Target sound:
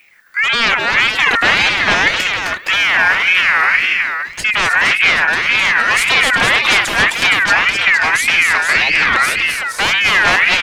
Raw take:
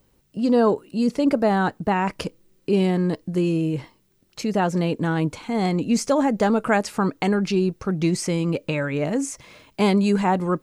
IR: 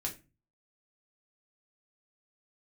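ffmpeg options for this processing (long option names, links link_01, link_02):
-filter_complex "[0:a]bass=frequency=250:gain=2,treble=frequency=4000:gain=-4,aeval=exprs='0.473*sin(PI/2*4.47*val(0)/0.473)':channel_layout=same,asplit=2[link_01][link_02];[link_02]adelay=991.3,volume=-22dB,highshelf=frequency=4000:gain=-22.3[link_03];[link_01][link_03]amix=inputs=2:normalize=0,asettb=1/sr,asplit=3[link_04][link_05][link_06];[link_04]atrim=end=2.744[link_07];[link_05]atrim=start=2.74:end=3.26,asetpts=PTS-STARTPTS,afade=type=in:duration=0.004:curve=qsin,afade=type=out:start_time=0.516:duration=0.004:curve=qsin,adynamicsmooth=sensitivity=6.5:basefreq=1800[link_08];[link_06]atrim=start=3.256[link_09];[link_07][link_08]acrossfade=duration=0.004:curve1=hsin:curve2=qsin[link_10];[link_10][link_09]acrossfade=duration=0.004:curve1=qsin:curve2=hsin,asplit=2[link_11][link_12];[link_12]aecho=0:1:235|260|466:0.112|0.631|0.501[link_13];[link_11][link_13]amix=inputs=2:normalize=0,aeval=exprs='val(0)*sin(2*PI*2000*n/s+2000*0.2/1.8*sin(2*PI*1.8*n/s))':channel_layout=same,volume=-2dB"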